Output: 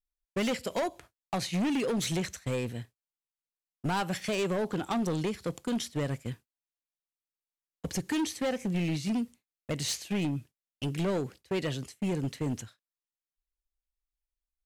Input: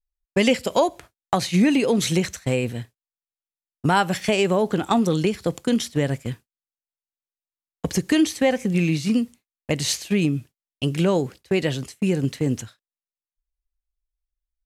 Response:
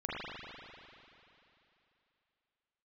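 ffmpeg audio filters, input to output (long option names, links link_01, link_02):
-af "volume=18.5dB,asoftclip=hard,volume=-18.5dB,volume=-7.5dB"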